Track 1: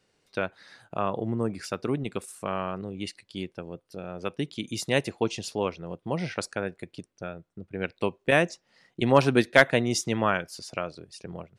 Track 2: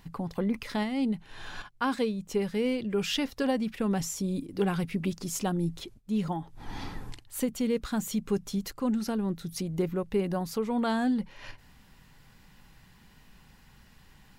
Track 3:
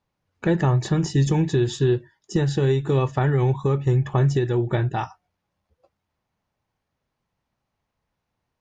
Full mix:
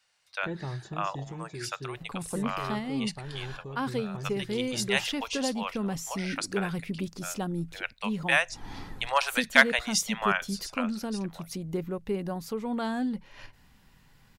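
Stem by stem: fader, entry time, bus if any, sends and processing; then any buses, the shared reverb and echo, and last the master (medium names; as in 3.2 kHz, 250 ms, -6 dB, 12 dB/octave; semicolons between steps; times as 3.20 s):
+2.5 dB, 0.00 s, no send, Bessel high-pass 1.1 kHz, order 8
-3.0 dB, 1.95 s, no send, none
-13.0 dB, 0.00 s, no send, auto duck -7 dB, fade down 1.35 s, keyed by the first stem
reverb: none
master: none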